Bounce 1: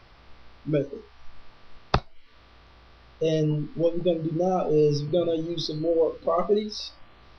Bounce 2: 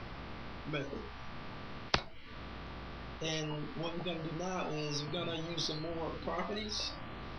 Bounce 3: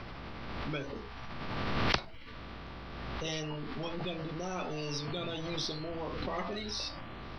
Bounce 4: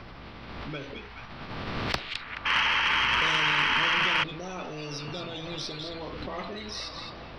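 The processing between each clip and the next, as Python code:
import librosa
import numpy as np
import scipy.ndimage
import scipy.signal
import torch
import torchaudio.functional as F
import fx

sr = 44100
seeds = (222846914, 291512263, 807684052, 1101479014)

y1 = fx.bass_treble(x, sr, bass_db=12, treble_db=-7)
y1 = fx.spectral_comp(y1, sr, ratio=4.0)
y1 = y1 * librosa.db_to_amplitude(-8.5)
y2 = fx.pre_swell(y1, sr, db_per_s=24.0)
y3 = fx.echo_stepped(y2, sr, ms=213, hz=3100.0, octaves=-0.7, feedback_pct=70, wet_db=-1.0)
y3 = fx.spec_paint(y3, sr, seeds[0], shape='noise', start_s=2.45, length_s=1.79, low_hz=850.0, high_hz=3300.0, level_db=-25.0)
y3 = fx.cheby_harmonics(y3, sr, harmonics=(4,), levels_db=(-20,), full_scale_db=-10.0)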